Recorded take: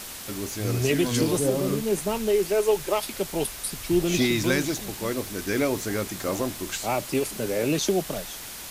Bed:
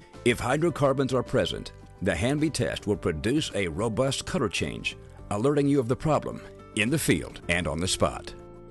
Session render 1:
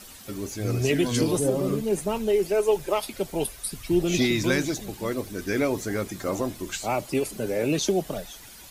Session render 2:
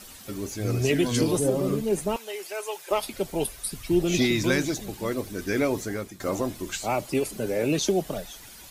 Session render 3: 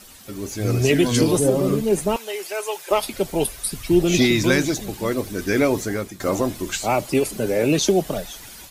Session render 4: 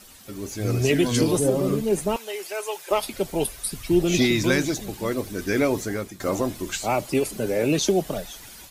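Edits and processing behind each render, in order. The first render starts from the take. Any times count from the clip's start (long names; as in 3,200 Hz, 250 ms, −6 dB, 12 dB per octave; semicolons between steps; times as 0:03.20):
broadband denoise 11 dB, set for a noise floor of −39 dBFS
0:02.16–0:02.91: high-pass filter 950 Hz; 0:05.78–0:06.20: fade out, to −12 dB
automatic gain control gain up to 6 dB
level −3 dB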